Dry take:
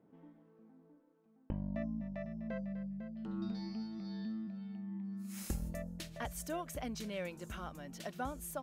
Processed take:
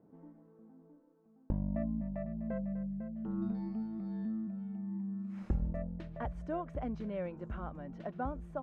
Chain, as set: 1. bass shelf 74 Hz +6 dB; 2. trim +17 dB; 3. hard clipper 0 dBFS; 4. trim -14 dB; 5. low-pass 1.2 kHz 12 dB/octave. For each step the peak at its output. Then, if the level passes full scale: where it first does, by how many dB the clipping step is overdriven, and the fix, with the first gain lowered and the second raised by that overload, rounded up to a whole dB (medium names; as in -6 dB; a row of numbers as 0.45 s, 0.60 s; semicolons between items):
-22.0 dBFS, -5.0 dBFS, -5.0 dBFS, -19.0 dBFS, -19.0 dBFS; nothing clips